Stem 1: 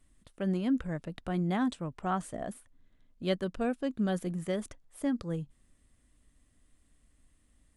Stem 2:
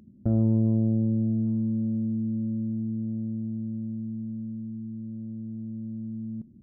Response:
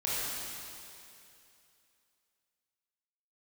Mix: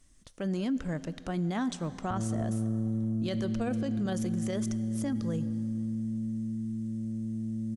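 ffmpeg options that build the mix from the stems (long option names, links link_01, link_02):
-filter_complex "[0:a]equalizer=frequency=5900:width=1.8:gain=13,volume=2dB,asplit=2[link_01][link_02];[link_02]volume=-23.5dB[link_03];[1:a]acompressor=threshold=-32dB:ratio=3,adelay=1850,volume=2.5dB[link_04];[2:a]atrim=start_sample=2205[link_05];[link_03][link_05]afir=irnorm=-1:irlink=0[link_06];[link_01][link_04][link_06]amix=inputs=3:normalize=0,alimiter=limit=-24dB:level=0:latency=1:release=20"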